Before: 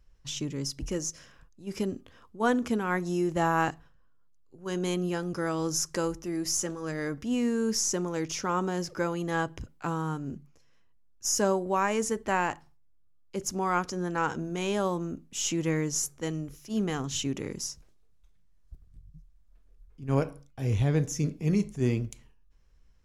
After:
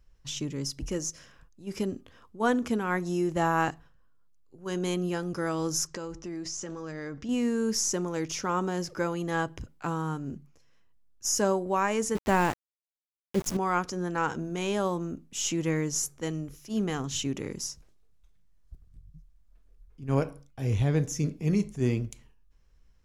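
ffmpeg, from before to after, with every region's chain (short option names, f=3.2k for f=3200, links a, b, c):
-filter_complex "[0:a]asettb=1/sr,asplit=3[a][b][c];[a]atrim=end=5.874[d];[b]atrim=start=5.87:end=7.29,asetpts=PTS-STARTPTS,afade=t=in:d=0.004:c=qsin,afade=t=out:st=1.416:d=0.004:c=qsin,lowpass=f=7.2k:w=0.5412,lowpass=f=7.2k:w=1.3066,acompressor=threshold=-33dB:ratio=5:attack=3.2:release=140:knee=1:detection=peak[e];[c]atrim=start=7.286[f];[d][e]acrossfade=d=0.004:c1=hsin:c2=qsin[g];[g][f]acrossfade=d=0.004:c1=qsin:c2=hsin,asettb=1/sr,asplit=3[h][i][j];[h]atrim=end=12.154[k];[i]atrim=start=12.15:end=13.57,asetpts=PTS-STARTPTS,afade=t=in:d=0.004:c=qsin,afade=t=out:st=1.416:d=0.004:c=qsin,lowshelf=f=390:g=10.5,aeval=exprs='val(0)*gte(abs(val(0)),0.0211)':c=same[l];[j]atrim=start=13.566[m];[k][l]acrossfade=d=0.004:c1=hsin:c2=qsin[n];[n][m]acrossfade=d=0.004:c1=qsin:c2=hsin"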